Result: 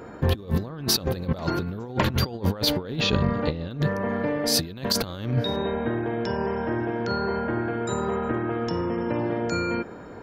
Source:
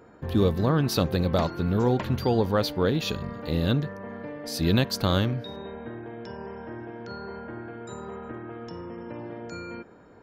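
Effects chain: negative-ratio compressor -30 dBFS, ratio -0.5; 3–3.71 air absorption 130 m; gain +6.5 dB

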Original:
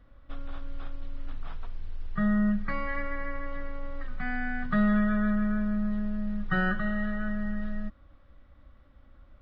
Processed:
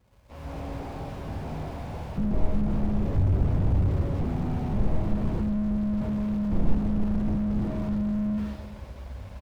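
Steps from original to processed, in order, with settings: tapped delay 52/70/130/362/419/481 ms -7.5/-16.5/-3.5/-16.5/-7.5/-4 dB; 3.14–3.77 LPC vocoder at 8 kHz whisper; HPF 60 Hz 24 dB/oct; wrapped overs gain 18 dB; fixed phaser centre 1300 Hz, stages 6; sample-rate reducer 1600 Hz, jitter 20%; AGC gain up to 16.5 dB; on a send at -4.5 dB: reverb RT60 1.1 s, pre-delay 5 ms; on the sum: slew limiter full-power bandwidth 11 Hz

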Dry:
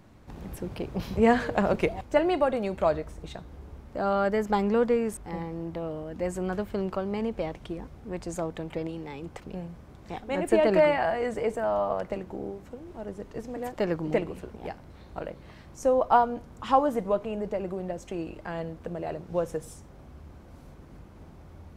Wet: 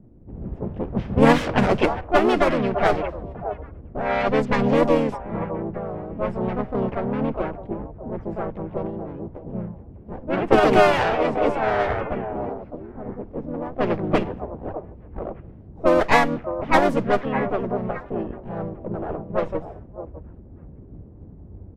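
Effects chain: minimum comb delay 0.39 ms; delay with a stepping band-pass 0.61 s, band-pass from 760 Hz, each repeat 1.4 oct, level -7 dB; harmoniser -7 st -4 dB, +3 st -2 dB; low-pass opened by the level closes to 360 Hz, open at -17 dBFS; gain +4 dB

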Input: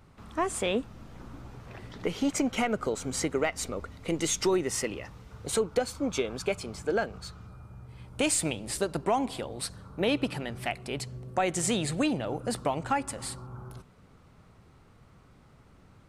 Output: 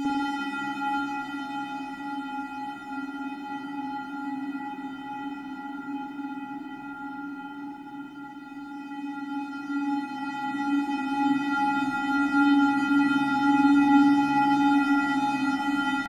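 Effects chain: sample sorter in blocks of 128 samples; reverb removal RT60 1.9 s; low shelf 170 Hz -10 dB; notch 2100 Hz; vocoder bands 16, square 181 Hz; pitch shift +7.5 st; requantised 12-bit, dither none; Paulstretch 23×, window 0.50 s, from 3.54; frequency-shifting echo 0.289 s, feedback 45%, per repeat -71 Hz, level -19 dB; spring tank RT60 1.6 s, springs 49/56 ms, chirp 60 ms, DRR -6.5 dB; gain +2 dB

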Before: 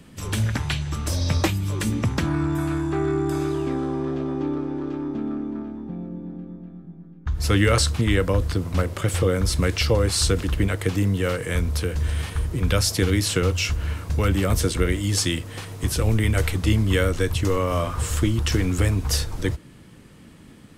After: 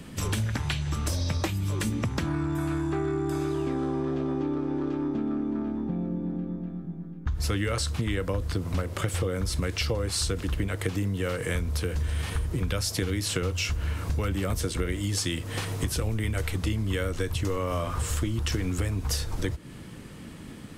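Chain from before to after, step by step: compressor 6:1, threshold -30 dBFS, peak gain reduction 15 dB; gain +4.5 dB

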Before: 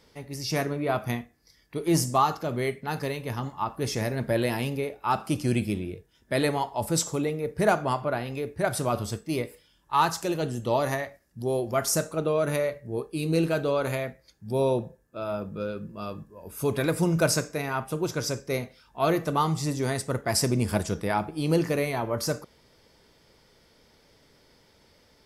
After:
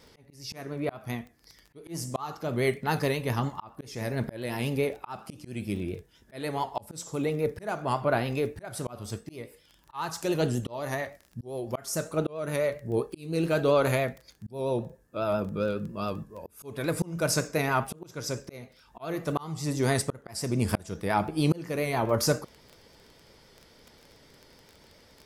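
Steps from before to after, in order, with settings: vibrato 7.3 Hz 50 cents; crackle 20/s -40 dBFS; auto swell 0.559 s; gain +3.5 dB

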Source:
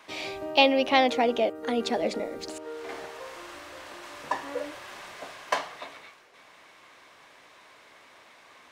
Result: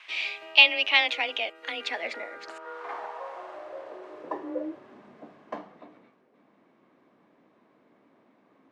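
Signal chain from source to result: band-pass sweep 2600 Hz -> 210 Hz, 1.67–5.04; frequency shift +20 Hz; gain +9 dB

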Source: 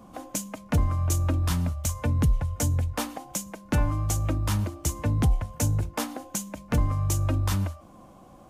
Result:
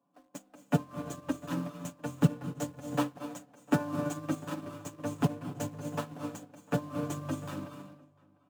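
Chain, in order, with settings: median filter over 9 samples; HPF 160 Hz 24 dB/oct; bell 7900 Hz +2.5 dB 0.28 oct; notch 2100 Hz, Q 7; comb 7 ms, depth 91%; in parallel at -10 dB: bit-crush 6-bit; on the sum: outdoor echo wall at 120 m, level -10 dB; on a send at -3.5 dB: reverb RT60 0.95 s, pre-delay 0.205 s; on the sum: upward expander 2.5:1, over -35 dBFS

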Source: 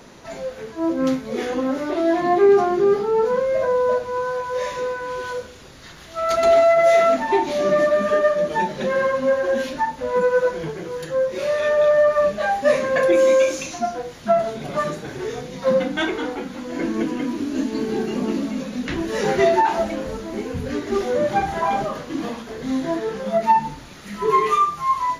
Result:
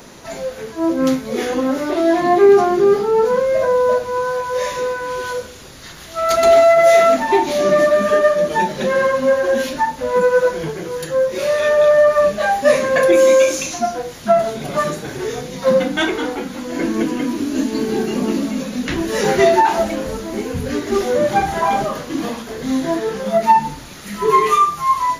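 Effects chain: high shelf 7700 Hz +11 dB; gain +4 dB

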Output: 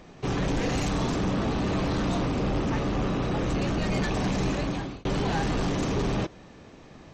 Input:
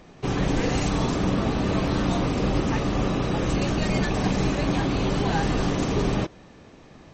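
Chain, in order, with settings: 2.25–3.92 high shelf 4300 Hz -5 dB; 4.5–5.05 fade out; soft clip -21 dBFS, distortion -14 dB

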